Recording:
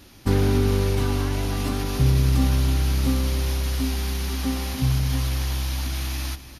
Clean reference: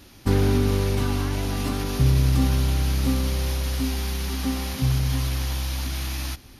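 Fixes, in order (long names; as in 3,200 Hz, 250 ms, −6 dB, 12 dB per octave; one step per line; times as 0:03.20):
echo removal 288 ms −13.5 dB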